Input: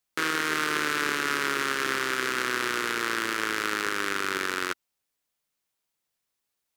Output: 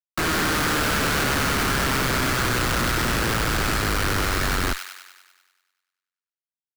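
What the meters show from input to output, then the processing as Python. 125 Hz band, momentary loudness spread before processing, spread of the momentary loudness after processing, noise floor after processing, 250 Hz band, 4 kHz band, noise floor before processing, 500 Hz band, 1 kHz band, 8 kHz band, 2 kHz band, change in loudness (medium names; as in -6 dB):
+21.5 dB, 2 LU, 3 LU, under -85 dBFS, +8.0 dB, +5.5 dB, -82 dBFS, +5.5 dB, +4.5 dB, +7.5 dB, +2.5 dB, +5.0 dB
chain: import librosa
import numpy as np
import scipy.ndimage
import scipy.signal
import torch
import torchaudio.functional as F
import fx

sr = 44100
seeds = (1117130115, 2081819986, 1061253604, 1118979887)

y = fx.tilt_shelf(x, sr, db=-8.0, hz=1100.0)
y = fx.schmitt(y, sr, flips_db=-30.5)
y = fx.echo_wet_highpass(y, sr, ms=98, feedback_pct=60, hz=1700.0, wet_db=-5)
y = y * 10.0 ** (4.5 / 20.0)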